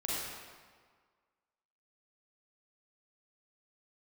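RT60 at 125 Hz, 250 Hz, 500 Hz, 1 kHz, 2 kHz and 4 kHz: 1.5 s, 1.6 s, 1.6 s, 1.7 s, 1.4 s, 1.2 s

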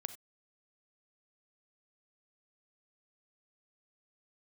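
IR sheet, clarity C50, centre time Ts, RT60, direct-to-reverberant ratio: 13.0 dB, 5 ms, no single decay rate, 11.5 dB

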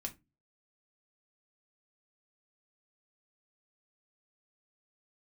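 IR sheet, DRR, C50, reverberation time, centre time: 2.5 dB, 17.5 dB, 0.20 s, 8 ms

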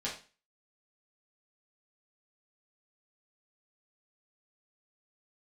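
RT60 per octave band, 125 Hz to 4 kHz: 0.35 s, 0.40 s, 0.35 s, 0.35 s, 0.35 s, 0.35 s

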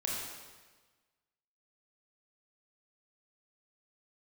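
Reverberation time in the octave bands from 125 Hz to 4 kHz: 1.5 s, 1.3 s, 1.4 s, 1.3 s, 1.3 s, 1.3 s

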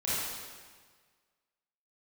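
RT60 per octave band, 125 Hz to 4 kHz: 1.7 s, 1.6 s, 1.6 s, 1.6 s, 1.5 s, 1.4 s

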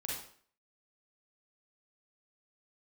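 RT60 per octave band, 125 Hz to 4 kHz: 0.45 s, 0.55 s, 0.55 s, 0.50 s, 0.50 s, 0.45 s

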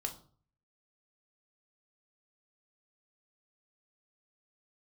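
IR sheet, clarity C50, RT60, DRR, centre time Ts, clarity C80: 12.0 dB, 0.45 s, 2.5 dB, 11 ms, 17.0 dB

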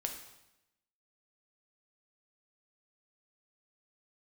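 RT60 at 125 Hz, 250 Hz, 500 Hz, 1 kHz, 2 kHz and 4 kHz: 1.0 s, 1.0 s, 0.90 s, 0.90 s, 0.85 s, 0.85 s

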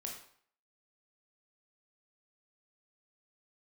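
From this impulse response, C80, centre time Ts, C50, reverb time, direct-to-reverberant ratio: 8.5 dB, 32 ms, 5.0 dB, 0.55 s, -0.5 dB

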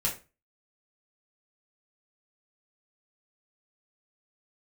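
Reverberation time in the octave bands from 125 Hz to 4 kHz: 0.40 s, 0.35 s, 0.30 s, 0.30 s, 0.30 s, 0.25 s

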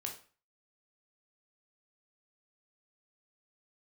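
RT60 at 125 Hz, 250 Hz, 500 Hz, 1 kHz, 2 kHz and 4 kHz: 0.45 s, 0.40 s, 0.40 s, 0.40 s, 0.40 s, 0.35 s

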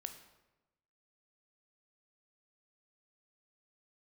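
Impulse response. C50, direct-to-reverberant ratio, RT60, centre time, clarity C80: 9.5 dB, 7.0 dB, 1.0 s, 15 ms, 12.0 dB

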